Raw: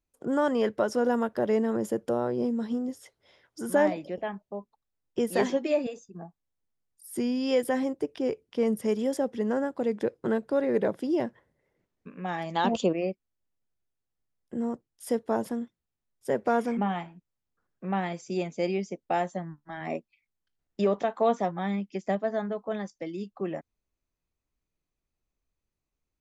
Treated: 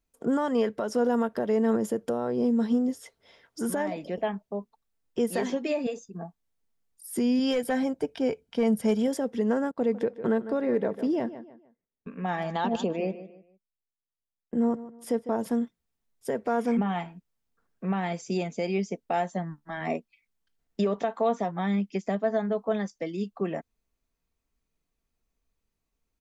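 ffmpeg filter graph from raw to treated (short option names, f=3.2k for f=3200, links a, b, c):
-filter_complex "[0:a]asettb=1/sr,asplit=3[a][b][c];[a]atrim=end=7.394[d];[b]atrim=start=7.39:end=9.08,asetpts=PTS-STARTPTS,afade=t=in:d=0.004:c=qsin,afade=t=out:st=1.686:d=0.004:c=qsin,highshelf=f=5.8k:g=-2.5,aecho=1:1:1.3:0.43,atrim=end_sample=74529,aeval=exprs='clip(val(0),-1,0.0841)':c=same[e];[c]atrim=start=9.076[f];[d][e]acrossfade=d=0.004:c1=hsin:c2=qsin[g];[g][f]acrossfade=d=0.004:c1=qsin:c2=hsin,asettb=1/sr,asplit=3[h][i][j];[h]atrim=end=9.714[k];[i]atrim=start=9.71:end=15.39,asetpts=PTS-STARTPTS,afade=t=in:d=0.004:c=qsin,afade=t=out:st=5.676:d=0.004:c=qsin,agate=range=-18dB:threshold=-52dB:ratio=16:release=100:detection=peak,highshelf=f=4k:g=-7.5,asplit=2[l][m];[m]adelay=151,lowpass=f=4.1k:p=1,volume=-15.5dB,asplit=2[n][o];[o]adelay=151,lowpass=f=4.1k:p=1,volume=0.31,asplit=2[p][q];[q]adelay=151,lowpass=f=4.1k:p=1,volume=0.31[r];[l][n][p][r]amix=inputs=4:normalize=0,atrim=end_sample=250488[s];[j]atrim=start=15.386[t];[k][s]acrossfade=d=0.004:c1=hsin:c2=qsin[u];[u][t]acrossfade=d=0.004:c1=qsin:c2=hsin,alimiter=limit=-22dB:level=0:latency=1:release=197,aecho=1:1:4.4:0.32,volume=3.5dB"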